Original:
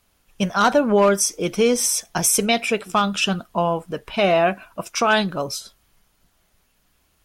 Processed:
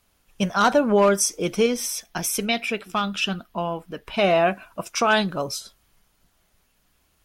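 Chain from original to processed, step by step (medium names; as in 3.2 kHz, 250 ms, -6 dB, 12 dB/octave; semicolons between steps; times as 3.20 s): 1.66–4.07 s: graphic EQ 125/500/1000/8000 Hz -7/-5/-4/-9 dB; trim -1.5 dB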